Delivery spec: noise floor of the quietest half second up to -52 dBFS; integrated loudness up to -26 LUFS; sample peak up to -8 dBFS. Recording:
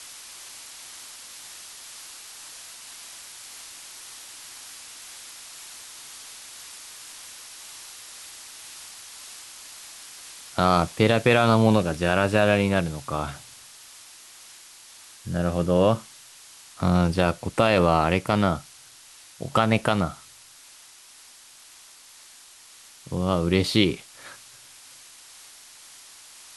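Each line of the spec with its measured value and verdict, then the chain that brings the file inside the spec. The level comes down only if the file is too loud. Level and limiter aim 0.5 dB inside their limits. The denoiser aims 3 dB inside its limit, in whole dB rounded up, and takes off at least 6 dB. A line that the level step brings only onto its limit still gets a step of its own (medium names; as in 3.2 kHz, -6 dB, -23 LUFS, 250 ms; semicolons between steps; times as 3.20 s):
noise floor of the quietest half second -50 dBFS: fail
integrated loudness -22.5 LUFS: fail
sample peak -5.5 dBFS: fail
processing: trim -4 dB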